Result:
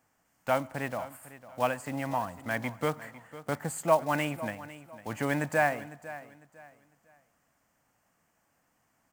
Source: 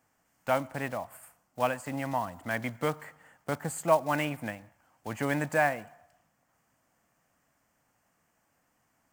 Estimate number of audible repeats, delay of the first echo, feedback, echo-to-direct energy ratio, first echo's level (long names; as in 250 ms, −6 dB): 2, 502 ms, 29%, −15.5 dB, −16.0 dB